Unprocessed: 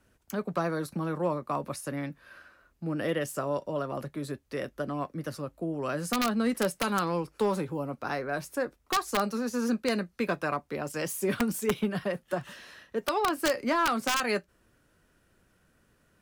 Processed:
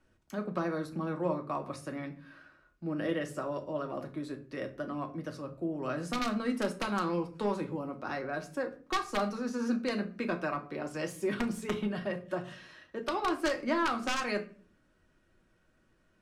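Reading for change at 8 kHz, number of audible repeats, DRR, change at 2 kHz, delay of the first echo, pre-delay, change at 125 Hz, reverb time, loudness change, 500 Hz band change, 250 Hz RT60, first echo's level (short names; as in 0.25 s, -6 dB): -9.5 dB, none, 4.0 dB, -3.5 dB, none, 3 ms, -4.5 dB, 0.40 s, -3.5 dB, -4.0 dB, 0.75 s, none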